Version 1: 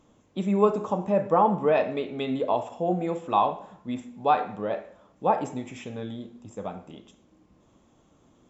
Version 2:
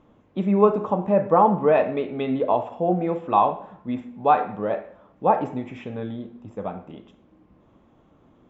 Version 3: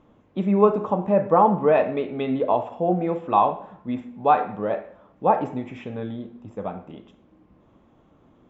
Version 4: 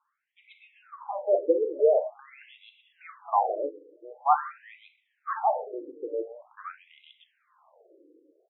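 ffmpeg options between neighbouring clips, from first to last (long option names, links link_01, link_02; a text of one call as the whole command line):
ffmpeg -i in.wav -af "lowpass=2400,volume=4dB" out.wav
ffmpeg -i in.wav -af anull out.wav
ffmpeg -i in.wav -filter_complex "[0:a]acrossover=split=760|2800[link_01][link_02][link_03];[link_03]adelay=130[link_04];[link_01]adelay=170[link_05];[link_05][link_02][link_04]amix=inputs=3:normalize=0,dynaudnorm=framelen=120:gausssize=11:maxgain=15dB,afftfilt=real='re*between(b*sr/1024,380*pow(2900/380,0.5+0.5*sin(2*PI*0.46*pts/sr))/1.41,380*pow(2900/380,0.5+0.5*sin(2*PI*0.46*pts/sr))*1.41)':imag='im*between(b*sr/1024,380*pow(2900/380,0.5+0.5*sin(2*PI*0.46*pts/sr))/1.41,380*pow(2900/380,0.5+0.5*sin(2*PI*0.46*pts/sr))*1.41)':win_size=1024:overlap=0.75,volume=-7dB" out.wav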